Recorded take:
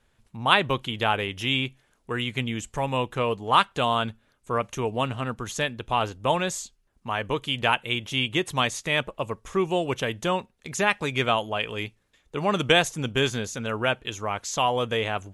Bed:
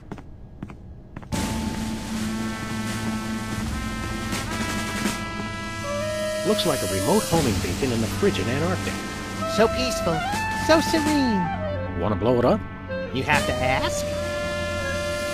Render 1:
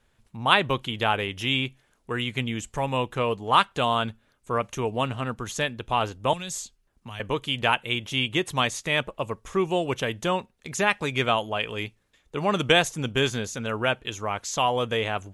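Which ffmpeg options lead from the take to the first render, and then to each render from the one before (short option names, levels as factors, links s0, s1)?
-filter_complex "[0:a]asettb=1/sr,asplit=3[s0][s1][s2];[s0]atrim=end=6.334[s3];[s1]atrim=start=6.33:end=7.2,asetpts=PTS-STARTPTS,afade=t=in:d=0.004:c=qsin,afade=t=out:st=0.866:d=0.004:c=qsin,acrossover=split=160|3000[s4][s5][s6];[s5]acompressor=threshold=0.01:ratio=6:attack=3.2:release=140:knee=2.83:detection=peak[s7];[s4][s7][s6]amix=inputs=3:normalize=0[s8];[s2]atrim=start=7.196[s9];[s3][s8]acrossfade=d=0.004:c1=hsin:c2=qsin[s10];[s10][s9]acrossfade=d=0.004:c1=qsin:c2=hsin"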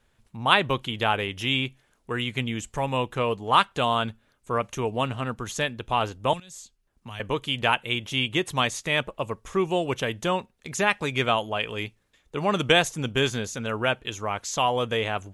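-filter_complex "[0:a]asplit=2[s0][s1];[s0]atrim=end=6.4,asetpts=PTS-STARTPTS,afade=t=out:st=6.396:d=0.004:c=hsin:silence=0.141254[s2];[s1]atrim=start=6.4,asetpts=PTS-STARTPTS,afade=t=in:d=0.7:silence=0.141254[s3];[s2][s3]concat=n=2:v=0:a=1"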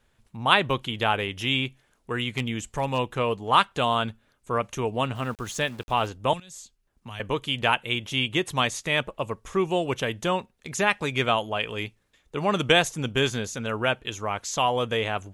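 -filter_complex "[0:a]asettb=1/sr,asplit=3[s0][s1][s2];[s0]atrim=end=2.334[s3];[s1]atrim=start=2.33:end=2.99,asetpts=PTS-STARTPTS,afade=t=in:d=0.004:c=qsin,afade=t=out:st=0.656:d=0.004:c=qsin,asoftclip=type=hard:threshold=0.133[s4];[s2]atrim=start=2.986[s5];[s3][s4]acrossfade=d=0.004:c1=hsin:c2=qsin[s6];[s6][s5]acrossfade=d=0.004:c1=qsin:c2=hsin,asettb=1/sr,asplit=3[s7][s8][s9];[s7]atrim=end=5.154[s10];[s8]atrim=start=5.15:end=6.07,asetpts=PTS-STARTPTS,afade=t=in:d=0.004:c=qsin,afade=t=out:st=0.916:d=0.004:c=qsin,aeval=exprs='val(0)*gte(abs(val(0)),0.00668)':c=same[s11];[s9]atrim=start=6.066[s12];[s10][s11]acrossfade=d=0.004:c1=hsin:c2=qsin[s13];[s13][s12]acrossfade=d=0.004:c1=qsin:c2=hsin"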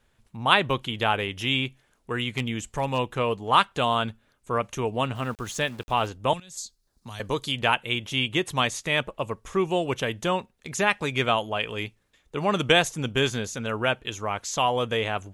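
-filter_complex "[0:a]asettb=1/sr,asplit=3[s0][s1][s2];[s0]atrim=end=6.574[s3];[s1]atrim=start=6.57:end=7.52,asetpts=PTS-STARTPTS,afade=t=in:d=0.004:c=qsin,afade=t=out:st=0.946:d=0.004:c=qsin,highshelf=f=3500:t=q:w=3:g=6.5[s4];[s2]atrim=start=7.516[s5];[s3][s4]acrossfade=d=0.004:c1=hsin:c2=qsin[s6];[s6][s5]acrossfade=d=0.004:c1=qsin:c2=hsin"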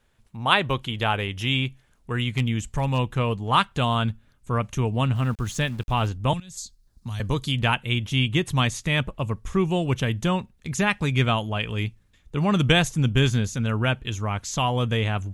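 -af "asubboost=boost=4.5:cutoff=210"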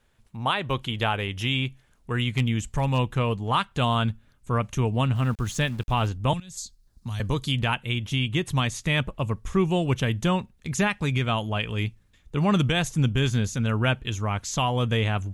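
-af "alimiter=limit=0.266:level=0:latency=1:release=264"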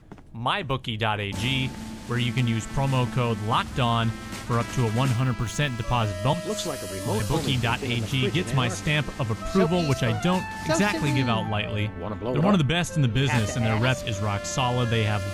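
-filter_complex "[1:a]volume=0.398[s0];[0:a][s0]amix=inputs=2:normalize=0"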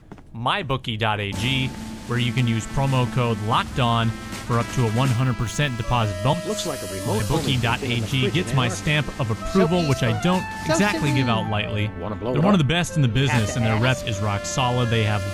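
-af "volume=1.41"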